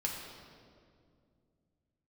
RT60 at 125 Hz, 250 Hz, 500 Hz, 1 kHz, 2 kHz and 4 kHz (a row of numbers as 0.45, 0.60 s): 3.5, 3.1, 2.6, 1.9, 1.6, 1.5 s